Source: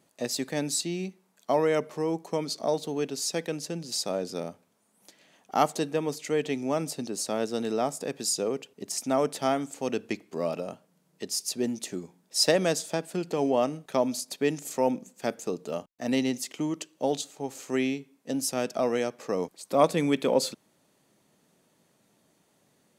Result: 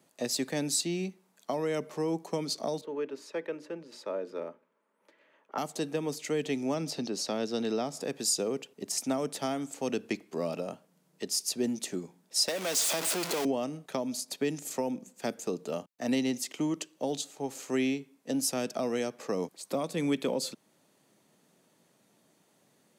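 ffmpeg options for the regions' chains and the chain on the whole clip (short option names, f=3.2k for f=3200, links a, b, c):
-filter_complex "[0:a]asettb=1/sr,asplit=3[a][b][c];[a]atrim=end=2.814[d];[b]atrim=start=2.81:end=5.58,asetpts=PTS-STARTPTS,afade=t=in:d=0.004:c=qsin,afade=t=out:st=2.766:d=0.004:c=qsin,asuperstop=centerf=740:order=4:qfactor=4.2,acrossover=split=310 2400:gain=0.126 1 0.0631[e][f][g];[e][f][g]amix=inputs=3:normalize=0,bandreject=f=60:t=h:w=6,bandreject=f=120:t=h:w=6,bandreject=f=180:t=h:w=6,bandreject=f=240:t=h:w=6,bandreject=f=300:t=h:w=6,bandreject=f=360:t=h:w=6[h];[c]atrim=start=5.576[i];[d][h]acrossfade=d=0.004:c1=hsin:c2=qsin[j];[j][i]acrossfade=d=0.004:c1=qsin:c2=hsin,asettb=1/sr,asplit=3[k][l][m];[k]atrim=end=6.744[n];[l]atrim=start=6.74:end=8.01,asetpts=PTS-STARTPTS,afade=t=in:d=0.004:c=qsin,afade=t=out:st=1.266:d=0.004:c=qsin,highpass=62,highshelf=f=6.6k:t=q:w=1.5:g=-7.5,acompressor=mode=upward:threshold=-31dB:ratio=2.5:attack=3.2:release=140:knee=2.83:detection=peak[o];[m]atrim=start=8.006[p];[n][o]acrossfade=d=0.004:c1=hsin:c2=qsin[q];[q][p]acrossfade=d=0.004:c1=qsin:c2=hsin,asettb=1/sr,asplit=3[r][s][t];[r]atrim=end=12.484[u];[s]atrim=start=12.48:end=13.45,asetpts=PTS-STARTPTS,afade=t=in:d=0.004:c=qsin,afade=t=out:st=0.966:d=0.004:c=qsin,aeval=exprs='val(0)+0.5*0.0708*sgn(val(0))':c=same,highpass=f=820:p=1,bandreject=f=1.7k:w=17[v];[t]atrim=start=13.446[w];[u][v]acrossfade=d=0.004:c1=hsin:c2=qsin[x];[x][w]acrossfade=d=0.004:c1=qsin:c2=hsin,highpass=120,alimiter=limit=-16dB:level=0:latency=1:release=393,acrossover=split=320|3000[y][z][aa];[z]acompressor=threshold=-31dB:ratio=6[ab];[y][ab][aa]amix=inputs=3:normalize=0"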